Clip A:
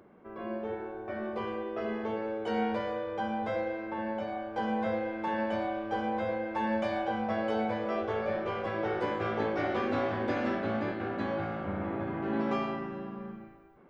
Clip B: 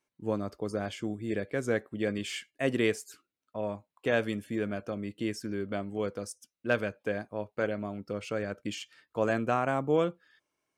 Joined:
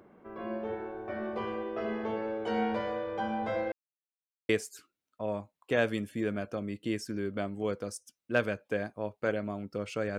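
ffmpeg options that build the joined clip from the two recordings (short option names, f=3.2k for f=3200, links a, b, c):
-filter_complex "[0:a]apad=whole_dur=10.18,atrim=end=10.18,asplit=2[a][b];[a]atrim=end=3.72,asetpts=PTS-STARTPTS,afade=t=out:st=3.716:d=0.004:c=hsin[c];[b]atrim=start=3.72:end=4.49,asetpts=PTS-STARTPTS,volume=0[d];[1:a]atrim=start=2.84:end=8.53,asetpts=PTS-STARTPTS,afade=t=in:d=0.004:c=hsin[e];[c][d][e]concat=n=3:v=0:a=1"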